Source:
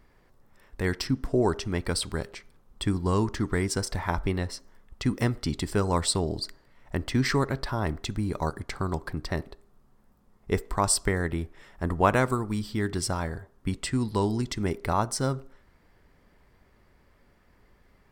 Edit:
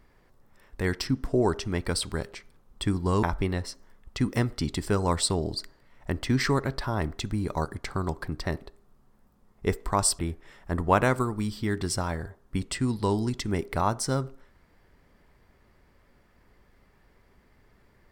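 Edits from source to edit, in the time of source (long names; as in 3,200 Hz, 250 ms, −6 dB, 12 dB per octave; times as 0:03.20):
0:03.23–0:04.08: remove
0:11.04–0:11.31: remove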